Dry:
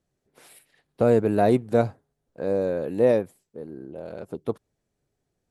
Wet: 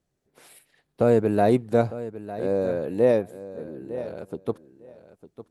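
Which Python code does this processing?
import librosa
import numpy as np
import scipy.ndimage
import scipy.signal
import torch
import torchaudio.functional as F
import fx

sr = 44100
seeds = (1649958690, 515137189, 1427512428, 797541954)

y = fx.echo_feedback(x, sr, ms=904, feedback_pct=15, wet_db=-14.5)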